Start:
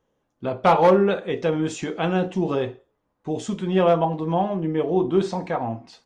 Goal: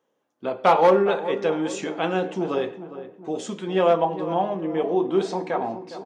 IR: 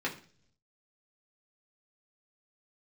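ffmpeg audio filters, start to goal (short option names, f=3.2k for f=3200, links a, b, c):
-filter_complex "[0:a]highpass=270,asplit=2[a][b];[b]adelay=410,lowpass=f=1.3k:p=1,volume=-12dB,asplit=2[c][d];[d]adelay=410,lowpass=f=1.3k:p=1,volume=0.5,asplit=2[e][f];[f]adelay=410,lowpass=f=1.3k:p=1,volume=0.5,asplit=2[g][h];[h]adelay=410,lowpass=f=1.3k:p=1,volume=0.5,asplit=2[i][j];[j]adelay=410,lowpass=f=1.3k:p=1,volume=0.5[k];[a][c][e][g][i][k]amix=inputs=6:normalize=0,asplit=2[l][m];[1:a]atrim=start_sample=2205,adelay=100[n];[m][n]afir=irnorm=-1:irlink=0,volume=-25dB[o];[l][o]amix=inputs=2:normalize=0"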